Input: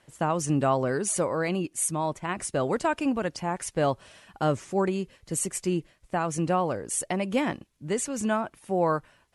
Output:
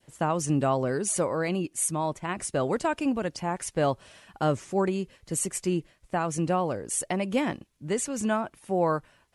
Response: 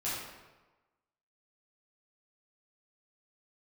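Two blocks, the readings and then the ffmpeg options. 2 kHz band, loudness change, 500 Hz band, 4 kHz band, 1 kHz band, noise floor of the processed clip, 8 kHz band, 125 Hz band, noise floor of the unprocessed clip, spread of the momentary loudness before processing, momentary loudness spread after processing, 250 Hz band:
-1.0 dB, -0.5 dB, -0.5 dB, -0.5 dB, -1.0 dB, -66 dBFS, 0.0 dB, 0.0 dB, -65 dBFS, 6 LU, 6 LU, 0.0 dB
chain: -af "adynamicequalizer=threshold=0.0141:dfrequency=1300:dqfactor=0.73:tfrequency=1300:tqfactor=0.73:attack=5:release=100:ratio=0.375:range=2:mode=cutabove:tftype=bell"

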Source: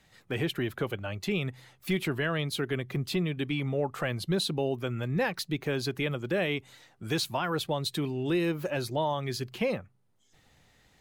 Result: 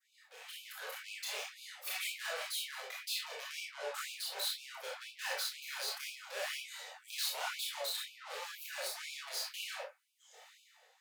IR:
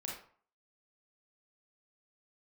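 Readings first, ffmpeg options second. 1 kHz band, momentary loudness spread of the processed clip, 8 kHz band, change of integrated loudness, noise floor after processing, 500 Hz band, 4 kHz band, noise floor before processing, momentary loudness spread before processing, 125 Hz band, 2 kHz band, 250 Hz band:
-10.0 dB, 9 LU, +2.0 dB, -8.5 dB, -68 dBFS, -16.5 dB, -2.5 dB, -66 dBFS, 4 LU, under -40 dB, -6.5 dB, under -40 dB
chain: -filter_complex "[0:a]highpass=f=46:w=0.5412,highpass=f=46:w=1.3066,aeval=exprs='(tanh(112*val(0)+0.25)-tanh(0.25))/112':c=same,acrossover=split=1800[a][b];[a]alimiter=level_in=26dB:limit=-24dB:level=0:latency=1:release=436,volume=-26dB[c];[c][b]amix=inputs=2:normalize=0,adynamicequalizer=threshold=0.00112:dfrequency=3200:dqfactor=0.98:tfrequency=3200:tqfactor=0.98:attack=5:release=100:ratio=0.375:range=1.5:mode=cutabove:tftype=bell[d];[1:a]atrim=start_sample=2205,afade=t=out:st=0.44:d=0.01,atrim=end_sample=19845,atrim=end_sample=4410[e];[d][e]afir=irnorm=-1:irlink=0,asplit=2[f][g];[g]adynamicsmooth=sensitivity=6:basefreq=1.1k,volume=0dB[h];[f][h]amix=inputs=2:normalize=0,flanger=delay=22.5:depth=6.1:speed=1.3,dynaudnorm=f=150:g=9:m=15dB,afftfilt=real='re*gte(b*sr/1024,400*pow(2300/400,0.5+0.5*sin(2*PI*2*pts/sr)))':imag='im*gte(b*sr/1024,400*pow(2300/400,0.5+0.5*sin(2*PI*2*pts/sr)))':win_size=1024:overlap=0.75"

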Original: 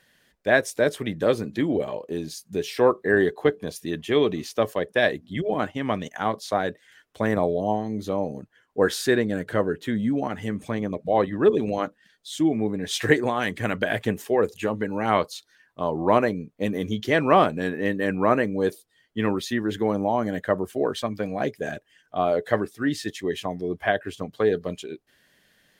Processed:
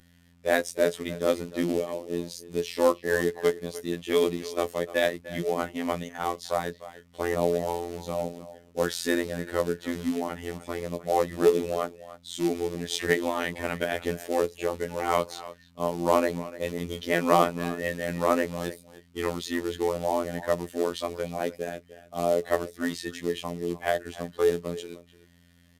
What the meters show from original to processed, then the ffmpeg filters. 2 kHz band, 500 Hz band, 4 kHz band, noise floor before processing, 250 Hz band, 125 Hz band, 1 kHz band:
-5.0 dB, -3.0 dB, -2.5 dB, -65 dBFS, -5.5 dB, -6.0 dB, -3.5 dB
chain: -filter_complex "[0:a]aeval=exprs='val(0)+0.00316*(sin(2*PI*60*n/s)+sin(2*PI*2*60*n/s)/2+sin(2*PI*3*60*n/s)/3+sin(2*PI*4*60*n/s)/4+sin(2*PI*5*60*n/s)/5)':c=same,asplit=2[a][b];[b]adelay=300,highpass=300,lowpass=3.4k,asoftclip=type=hard:threshold=-12.5dB,volume=-15dB[c];[a][c]amix=inputs=2:normalize=0,acrusher=bits=4:mode=log:mix=0:aa=0.000001,bandreject=f=1.6k:w=12,aresample=32000,aresample=44100,afftfilt=real='hypot(re,im)*cos(PI*b)':imag='0':win_size=2048:overlap=0.75,equalizer=f=110:t=o:w=0.47:g=-12"

